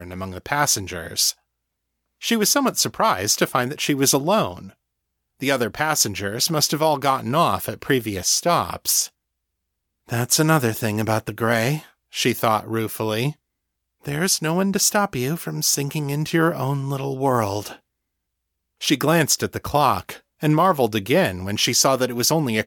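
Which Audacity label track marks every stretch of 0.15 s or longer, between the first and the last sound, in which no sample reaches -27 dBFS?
1.310000	2.230000	silence
4.590000	5.420000	silence
9.060000	10.100000	silence
11.790000	12.150000	silence
13.310000	14.050000	silence
17.720000	18.820000	silence
20.130000	20.430000	silence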